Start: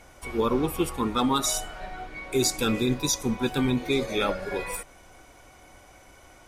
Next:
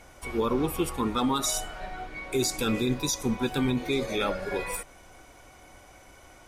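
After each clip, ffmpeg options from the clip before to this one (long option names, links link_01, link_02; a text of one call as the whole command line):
ffmpeg -i in.wav -af "alimiter=limit=-17.5dB:level=0:latency=1:release=59" out.wav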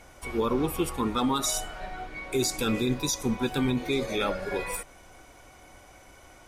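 ffmpeg -i in.wav -af anull out.wav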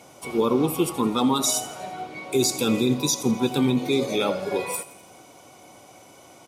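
ffmpeg -i in.wav -af "highpass=frequency=120:width=0.5412,highpass=frequency=120:width=1.3066,equalizer=frequency=1700:width=2.2:gain=-12,aecho=1:1:84|168|252|336|420:0.133|0.0747|0.0418|0.0234|0.0131,volume=5.5dB" out.wav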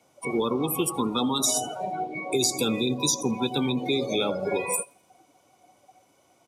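ffmpeg -i in.wav -filter_complex "[0:a]afftdn=noise_reduction=21:noise_floor=-33,acrossover=split=88|680|1500|4100[link_01][link_02][link_03][link_04][link_05];[link_01]acompressor=threshold=-56dB:ratio=4[link_06];[link_02]acompressor=threshold=-34dB:ratio=4[link_07];[link_03]acompressor=threshold=-44dB:ratio=4[link_08];[link_04]acompressor=threshold=-45dB:ratio=4[link_09];[link_05]acompressor=threshold=-31dB:ratio=4[link_10];[link_06][link_07][link_08][link_09][link_10]amix=inputs=5:normalize=0,volume=7dB" out.wav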